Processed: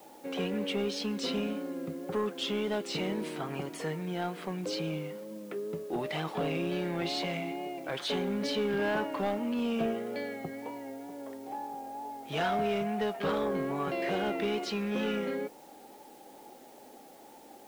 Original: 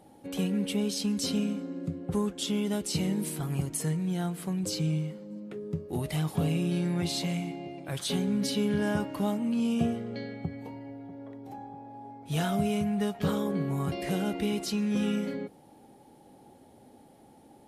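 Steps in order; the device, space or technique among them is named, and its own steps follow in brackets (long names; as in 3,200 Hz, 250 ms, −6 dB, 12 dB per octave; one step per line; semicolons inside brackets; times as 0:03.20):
tape answering machine (band-pass filter 380–3,000 Hz; soft clipping −29 dBFS, distortion −16 dB; tape wow and flutter; white noise bed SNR 27 dB)
level +6 dB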